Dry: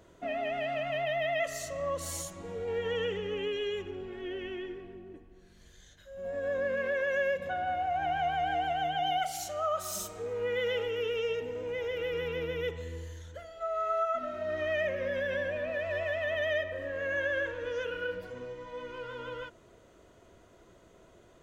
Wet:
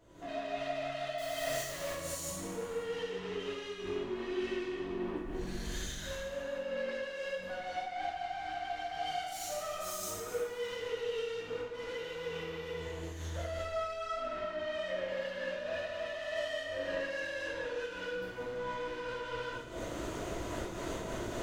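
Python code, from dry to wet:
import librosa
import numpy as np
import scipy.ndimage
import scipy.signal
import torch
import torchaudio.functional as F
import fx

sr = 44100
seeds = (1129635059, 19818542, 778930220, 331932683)

y = fx.halfwave_hold(x, sr, at=(1.18, 1.83))
y = fx.recorder_agc(y, sr, target_db=-24.0, rise_db_per_s=49.0, max_gain_db=30)
y = 10.0 ** (-34.0 / 20.0) * np.tanh(y / 10.0 ** (-34.0 / 20.0))
y = fx.high_shelf(y, sr, hz=7800.0, db=-12.0, at=(14.01, 15.03))
y = y + 10.0 ** (-18.5 / 20.0) * np.pad(y, (int(473 * sr / 1000.0), 0))[:len(y)]
y = fx.rev_gated(y, sr, seeds[0], gate_ms=440, shape='falling', drr_db=-7.5)
y = fx.am_noise(y, sr, seeds[1], hz=5.7, depth_pct=60)
y = y * librosa.db_to_amplitude(-6.5)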